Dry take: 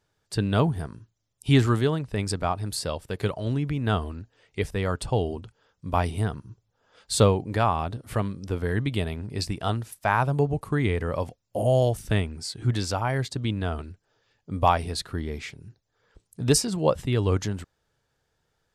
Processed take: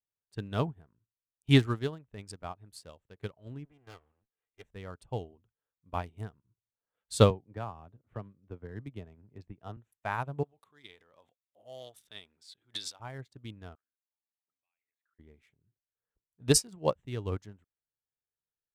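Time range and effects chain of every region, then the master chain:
3.65–4.66 minimum comb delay 2.5 ms + low shelf 330 Hz -8 dB
7.3–9.77 LPF 1300 Hz 6 dB/oct + three-band squash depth 40%
10.43–13 transient shaper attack -3 dB, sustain +8 dB + HPF 890 Hz 6 dB/oct + bell 3600 Hz +13.5 dB 0.3 oct
13.75–15.19 compressor 4:1, threshold -37 dBFS + auto-wah 710–2600 Hz, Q 8.7, up, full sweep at -34 dBFS
whole clip: Wiener smoothing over 9 samples; high shelf 2900 Hz +4.5 dB; upward expander 2.5:1, over -34 dBFS

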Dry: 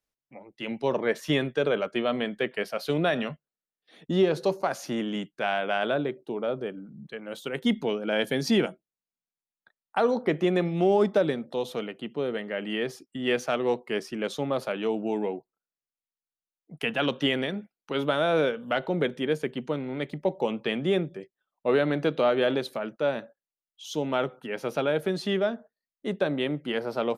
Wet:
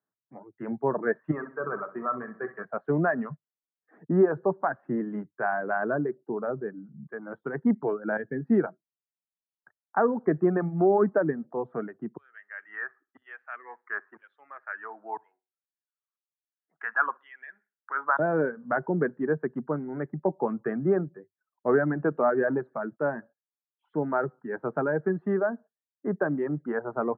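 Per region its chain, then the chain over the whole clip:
1.31–2.65 bell 1200 Hz +13 dB 0.55 oct + resonator 190 Hz, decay 0.43 s, mix 70% + flutter echo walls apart 11 m, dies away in 0.65 s
8.17–8.64 bell 970 Hz -10.5 dB + upward expander, over -33 dBFS
12.17–18.19 LFO high-pass saw down 1 Hz 990–3900 Hz + feedback echo 62 ms, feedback 28%, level -17 dB
whole clip: Chebyshev band-pass 100–1700 Hz, order 5; reverb removal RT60 0.95 s; bell 530 Hz -7.5 dB 0.3 oct; gain +3 dB

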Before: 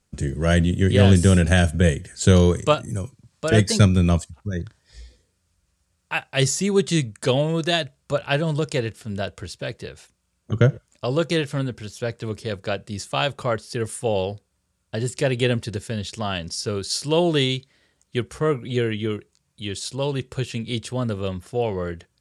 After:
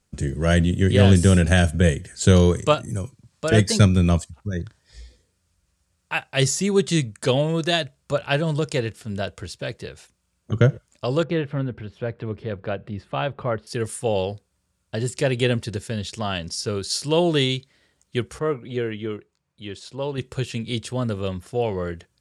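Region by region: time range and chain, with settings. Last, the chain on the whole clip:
11.23–13.67 upward compressor, threshold -28 dBFS + air absorption 470 m
18.39–20.18 LPF 1600 Hz 6 dB/oct + low shelf 260 Hz -7.5 dB
whole clip: dry

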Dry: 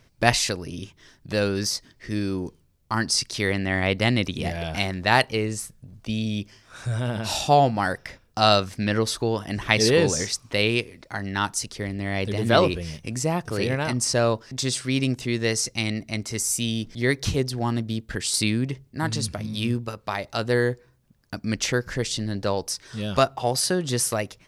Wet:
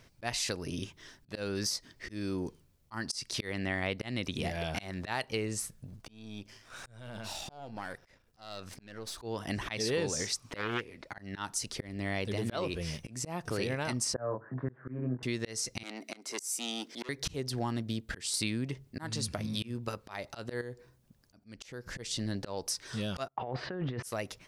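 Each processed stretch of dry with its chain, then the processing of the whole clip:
5.96–9.18 half-wave gain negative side -7 dB + compressor 2.5:1, threshold -41 dBFS
10.56–11.18 tone controls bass -2 dB, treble -6 dB + auto swell 0.286 s + Doppler distortion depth 0.44 ms
14.14–15.23 Chebyshev band-pass 100–1700 Hz, order 5 + doubler 24 ms -3 dB
15.83–17.09 HPF 270 Hz 24 dB/oct + core saturation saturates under 3000 Hz
20.61–21.98 bell 1700 Hz -3.5 dB 1.7 oct + compressor 2:1, threshold -39 dBFS
23.28–24.03 gate -36 dBFS, range -32 dB + LPF 2300 Hz 24 dB/oct + negative-ratio compressor -32 dBFS
whole clip: low shelf 210 Hz -3.5 dB; auto swell 0.308 s; compressor 3:1, threshold -32 dBFS

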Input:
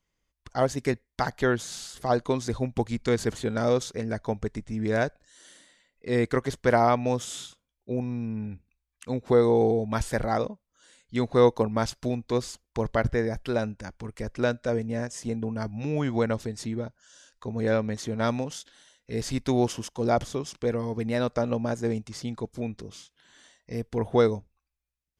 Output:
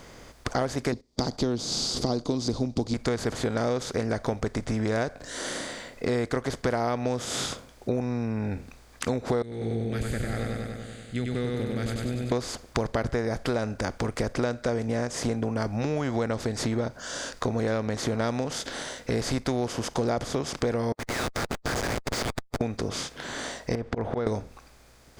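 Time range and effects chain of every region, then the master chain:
0.92–2.94 gate -51 dBFS, range -23 dB + EQ curve 100 Hz 0 dB, 290 Hz +8 dB, 530 Hz -6 dB, 1100 Hz -9 dB, 1700 Hz -24 dB, 3100 Hz -4 dB, 4700 Hz +11 dB, 7500 Hz -1 dB, 11000 Hz -12 dB
9.42–12.32 passive tone stack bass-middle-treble 6-0-2 + fixed phaser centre 2400 Hz, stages 4 + feedback echo 97 ms, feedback 57%, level -3.5 dB
20.92–22.61 steep high-pass 1600 Hz 48 dB/oct + Schmitt trigger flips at -46.5 dBFS
23.75–24.27 LPF 2000 Hz + auto swell 0.436 s + compressor, threshold -37 dBFS
whole clip: per-bin compression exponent 0.6; compressor 5:1, threshold -32 dBFS; gain +7 dB

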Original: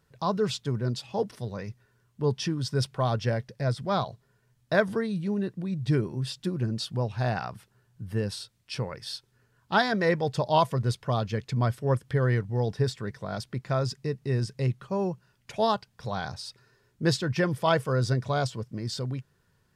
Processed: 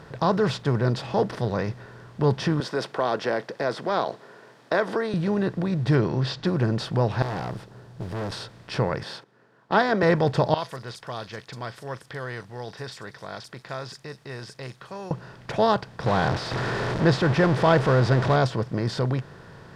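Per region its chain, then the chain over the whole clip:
2.6–5.14 HPF 290 Hz 24 dB/oct + compressor 1.5:1, threshold -32 dBFS
5.95–6.47 LPF 6200 Hz 24 dB/oct + bell 4300 Hz +7.5 dB
7.22–8.32 bell 1700 Hz -10.5 dB 1.9 oct + tube stage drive 40 dB, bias 0.45 + modulation noise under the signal 24 dB
9.03–10.03 HPF 200 Hz 24 dB/oct + gate -57 dBFS, range -21 dB + high shelf 3300 Hz -8 dB
10.54–15.11 pre-emphasis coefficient 0.97 + bands offset in time lows, highs 40 ms, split 5200 Hz
16.06–18.36 zero-crossing step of -31 dBFS + air absorption 75 m
whole clip: per-bin compression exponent 0.6; LPF 2700 Hz 6 dB/oct; gain +2 dB

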